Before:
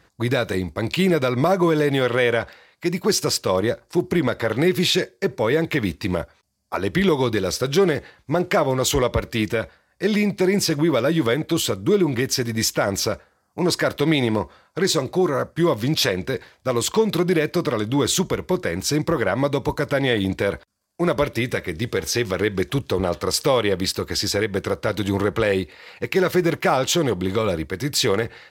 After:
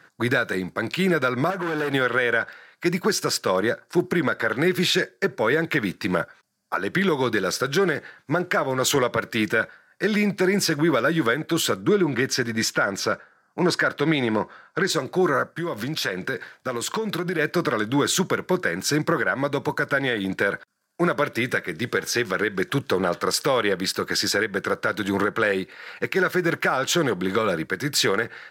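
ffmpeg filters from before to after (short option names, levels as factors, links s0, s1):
-filter_complex "[0:a]asettb=1/sr,asplit=3[s0][s1][s2];[s0]atrim=end=1.504[s3];[s1]atrim=start=1.5:end=1.94,asetpts=PTS-STARTPTS,afade=t=in:d=0.004:c=qsin,afade=t=out:st=0.436:d=0.004:c=qsin,aeval=exprs='(tanh(14.1*val(0)+0.45)-tanh(0.45))/14.1':c=same[s4];[s2]atrim=start=1.936[s5];[s3][s4]acrossfade=d=0.004:c1=hsin:c2=qsin[s6];[s6][s5]acrossfade=d=0.004:c1=qsin:c2=hsin,asettb=1/sr,asplit=3[s7][s8][s9];[s7]atrim=end=11.814[s10];[s8]atrim=start=11.81:end=14.9,asetpts=PTS-STARTPTS,afade=t=in:d=0.004:c=qsin,afade=t=out:st=3.086:d=0.004:c=qsin,highshelf=f=9300:g=-12[s11];[s9]atrim=start=14.896[s12];[s10][s11]acrossfade=d=0.004:c1=hsin:c2=qsin[s13];[s13][s12]acrossfade=d=0.004:c1=qsin:c2=hsin,asettb=1/sr,asplit=3[s14][s15][s16];[s14]atrim=end=15.554[s17];[s15]atrim=start=15.55:end=17.39,asetpts=PTS-STARTPTS,afade=t=in:d=0.004:c=qsin,afade=t=out:st=1.836:d=0.004:c=qsin,acompressor=threshold=0.0631:ratio=4:attack=3.2:release=140:knee=1:detection=peak[s18];[s16]atrim=start=17.386[s19];[s17][s18]acrossfade=d=0.004:c1=hsin:c2=qsin[s20];[s20][s19]acrossfade=d=0.004:c1=qsin:c2=hsin,highpass=f=130:w=0.5412,highpass=f=130:w=1.3066,equalizer=f=1500:t=o:w=0.49:g=12,alimiter=limit=0.299:level=0:latency=1:release=377"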